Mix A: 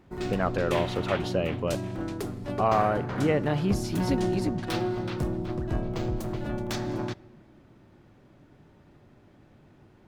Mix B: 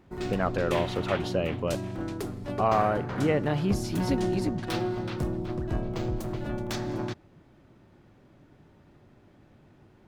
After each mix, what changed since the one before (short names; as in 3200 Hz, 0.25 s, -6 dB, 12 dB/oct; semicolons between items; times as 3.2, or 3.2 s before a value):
reverb: off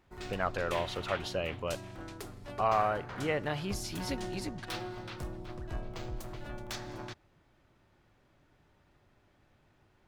background -3.5 dB; master: add bell 220 Hz -11 dB 2.8 oct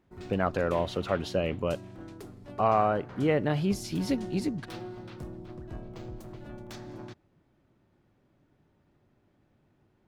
background -7.5 dB; master: add bell 220 Hz +11 dB 2.8 oct